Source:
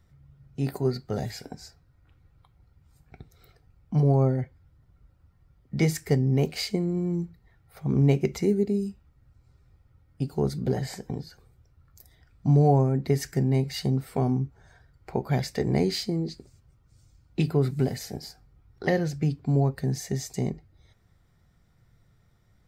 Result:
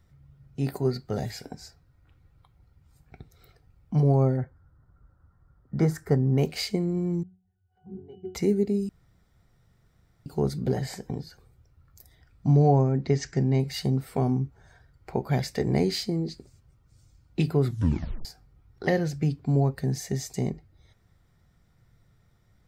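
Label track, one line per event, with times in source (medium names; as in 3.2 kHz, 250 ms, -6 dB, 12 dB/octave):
4.370000	6.380000	resonant high shelf 1.9 kHz -9 dB, Q 3
7.230000	8.350000	pitch-class resonator F#, decay 0.38 s
8.890000	10.260000	room tone
12.520000	13.600000	steep low-pass 7.1 kHz 48 dB/octave
17.650000	17.650000	tape stop 0.60 s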